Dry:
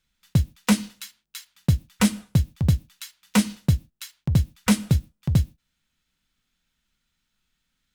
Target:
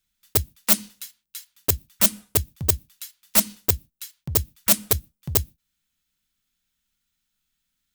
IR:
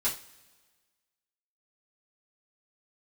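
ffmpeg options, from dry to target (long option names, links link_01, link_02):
-af "aeval=exprs='(mod(3.55*val(0)+1,2)-1)/3.55':channel_layout=same,aemphasis=mode=production:type=50kf,volume=-7dB"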